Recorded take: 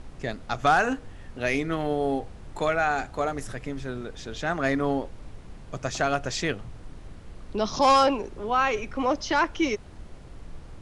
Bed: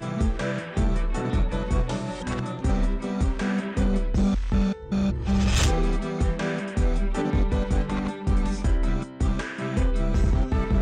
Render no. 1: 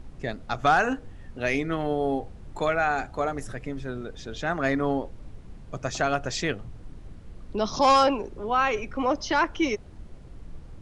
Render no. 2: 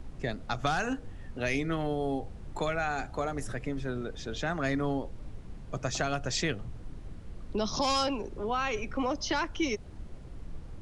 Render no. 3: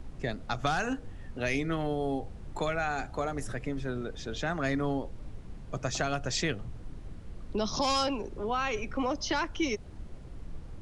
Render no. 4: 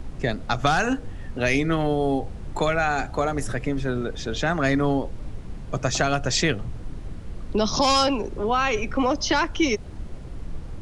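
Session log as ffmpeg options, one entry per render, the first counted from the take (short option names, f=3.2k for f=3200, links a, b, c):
-af "afftdn=nr=6:nf=-45"
-filter_complex "[0:a]acrossover=split=210|3000[a][b][c];[b]acompressor=threshold=-31dB:ratio=3[d];[a][d][c]amix=inputs=3:normalize=0"
-af anull
-af "volume=8.5dB"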